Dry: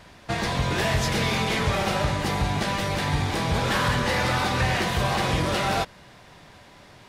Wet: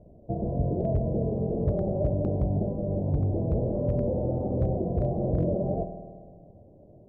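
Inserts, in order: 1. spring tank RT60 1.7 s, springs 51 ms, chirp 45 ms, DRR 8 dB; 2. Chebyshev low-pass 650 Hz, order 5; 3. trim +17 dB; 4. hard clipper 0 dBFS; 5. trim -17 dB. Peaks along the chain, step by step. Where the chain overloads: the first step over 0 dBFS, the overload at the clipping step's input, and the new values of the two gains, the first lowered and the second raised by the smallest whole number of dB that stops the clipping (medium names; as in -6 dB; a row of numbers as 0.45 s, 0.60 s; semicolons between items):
-11.0 dBFS, -14.0 dBFS, +3.0 dBFS, 0.0 dBFS, -17.0 dBFS; step 3, 3.0 dB; step 3 +14 dB, step 5 -14 dB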